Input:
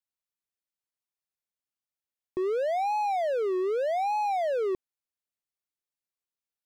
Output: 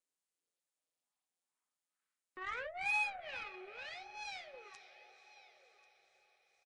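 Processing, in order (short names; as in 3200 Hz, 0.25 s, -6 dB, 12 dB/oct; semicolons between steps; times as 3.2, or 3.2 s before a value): in parallel at -4 dB: one-sided clip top -33.5 dBFS, bottom -25.5 dBFS; on the sum: vocal rider 0.5 s; soft clip -29.5 dBFS, distortion -12 dB; on a send at -11 dB: graphic EQ 125/250/500/1000/2000/8000 Hz -8/+7/+9/+5/+8/-5 dB + reverb, pre-delay 3 ms; on the sum: harmonic tremolo 2.2 Hz, depth 100%, crossover 700 Hz; high shelf 2400 Hz +8.5 dB; echo 1.091 s -18 dB; band-pass sweep 410 Hz -> 5800 Hz, 0.31–4.15; diffused feedback echo 0.491 s, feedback 58%, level -14.5 dB; added harmonics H 6 -22 dB, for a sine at -34.5 dBFS; gain +6 dB; Nellymoser 44 kbps 22050 Hz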